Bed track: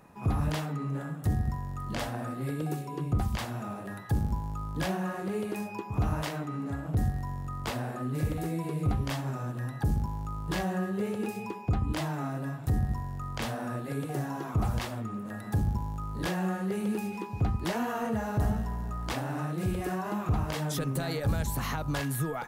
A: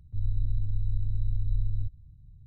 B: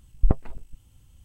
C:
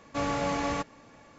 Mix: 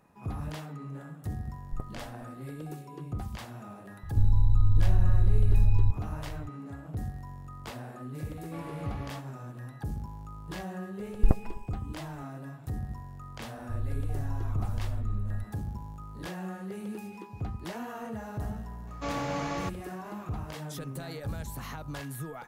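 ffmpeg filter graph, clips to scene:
ffmpeg -i bed.wav -i cue0.wav -i cue1.wav -i cue2.wav -filter_complex "[2:a]asplit=2[link_01][link_02];[1:a]asplit=2[link_03][link_04];[3:a]asplit=2[link_05][link_06];[0:a]volume=-7.5dB[link_07];[link_03]alimiter=level_in=24dB:limit=-1dB:release=50:level=0:latency=1[link_08];[link_05]lowpass=3300[link_09];[link_04]equalizer=frequency=270:width=0.36:gain=11.5[link_10];[link_06]aresample=16000,aresample=44100[link_11];[link_01]atrim=end=1.24,asetpts=PTS-STARTPTS,volume=-17dB,afade=type=in:duration=0.004:curve=hsin,afade=type=out:start_time=1.236:duration=0.004:curve=hsin,adelay=1490[link_12];[link_08]atrim=end=2.46,asetpts=PTS-STARTPTS,volume=-12.5dB,afade=type=in:duration=0.004:curve=hsin,afade=type=out:start_time=2.456:duration=0.004:curve=hsin,adelay=4030[link_13];[link_09]atrim=end=1.38,asetpts=PTS-STARTPTS,volume=-14dB,afade=type=in:duration=0.004:curve=hsin,afade=type=out:start_time=1.376:duration=0.004:curve=hsin,adelay=8370[link_14];[link_02]atrim=end=1.24,asetpts=PTS-STARTPTS,volume=-2.5dB,afade=type=in:duration=0.004:curve=hsin,afade=type=out:start_time=1.236:duration=0.004:curve=hsin,adelay=11000[link_15];[link_10]atrim=end=2.46,asetpts=PTS-STARTPTS,volume=-8dB,afade=type=in:duration=0.004:curve=hsin,afade=type=out:start_time=2.456:duration=0.004:curve=hsin,adelay=13560[link_16];[link_11]atrim=end=1.38,asetpts=PTS-STARTPTS,volume=-4dB,afade=type=in:duration=0.004:curve=hsin,afade=type=out:start_time=1.376:duration=0.004:curve=hsin,adelay=18870[link_17];[link_07][link_12][link_13][link_14][link_15][link_16][link_17]amix=inputs=7:normalize=0" out.wav

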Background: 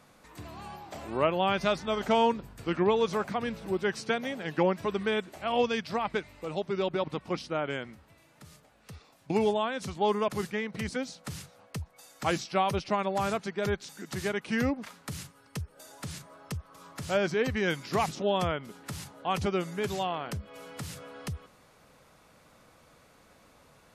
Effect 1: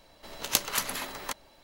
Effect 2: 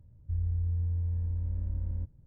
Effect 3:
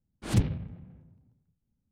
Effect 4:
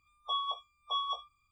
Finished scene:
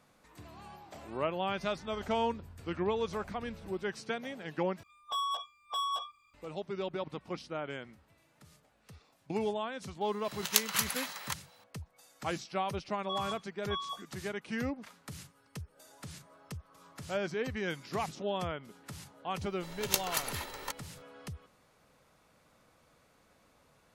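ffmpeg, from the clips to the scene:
ffmpeg -i bed.wav -i cue0.wav -i cue1.wav -i cue2.wav -i cue3.wav -filter_complex "[4:a]asplit=2[link_01][link_02];[1:a]asplit=2[link_03][link_04];[0:a]volume=-7dB[link_05];[2:a]acompressor=threshold=-42dB:ratio=6:attack=3.2:release=140:knee=1:detection=peak[link_06];[link_01]asplit=2[link_07][link_08];[link_08]highpass=frequency=720:poles=1,volume=19dB,asoftclip=type=tanh:threshold=-23.5dB[link_09];[link_07][link_09]amix=inputs=2:normalize=0,lowpass=frequency=4500:poles=1,volume=-6dB[link_10];[link_03]highpass=980[link_11];[link_04]aecho=1:1:2.2:0.41[link_12];[link_05]asplit=2[link_13][link_14];[link_13]atrim=end=4.834[link_15];[link_10]atrim=end=1.51,asetpts=PTS-STARTPTS,volume=-4dB[link_16];[link_14]atrim=start=6.336[link_17];[link_06]atrim=end=2.26,asetpts=PTS-STARTPTS,volume=-9dB,afade=type=in:duration=0.004:curve=hsin,afade=type=out:start_time=2.256:duration=0.004:curve=hsin,adelay=1640[link_18];[link_11]atrim=end=1.63,asetpts=PTS-STARTPTS,volume=-1dB,afade=type=in:duration=0.004:curve=hsin,afade=type=out:start_time=1.626:duration=0.004:curve=hsin,adelay=10010[link_19];[link_02]atrim=end=1.51,asetpts=PTS-STARTPTS,volume=-5dB,afade=type=in:duration=0.004:curve=hsin,afade=type=out:start_time=1.506:duration=0.004:curve=hsin,adelay=12800[link_20];[link_12]atrim=end=1.63,asetpts=PTS-STARTPTS,volume=-5dB,afade=type=in:duration=0.004:curve=hsin,afade=type=out:start_time=1.626:duration=0.004:curve=hsin,adelay=19390[link_21];[link_15][link_16]acrossfade=duration=0.004:curve1=hsin:curve2=hsin[link_22];[link_22][link_17]acrossfade=duration=0.004:curve1=hsin:curve2=hsin[link_23];[link_23][link_18][link_19][link_20][link_21]amix=inputs=5:normalize=0" out.wav

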